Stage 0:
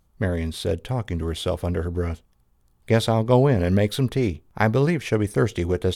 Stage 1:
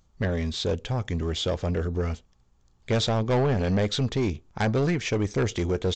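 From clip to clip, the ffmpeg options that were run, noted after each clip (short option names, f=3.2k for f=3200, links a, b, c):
-af "highshelf=f=4.7k:g=8.5,aresample=16000,asoftclip=type=tanh:threshold=-18.5dB,aresample=44100"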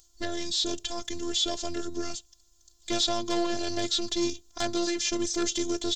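-filter_complex "[0:a]acrossover=split=2800[a][b];[b]acompressor=threshold=-42dB:ratio=4:attack=1:release=60[c];[a][c]amix=inputs=2:normalize=0,aexciter=amount=7.3:drive=6.6:freq=3.3k,afftfilt=real='hypot(re,im)*cos(PI*b)':imag='0':win_size=512:overlap=0.75"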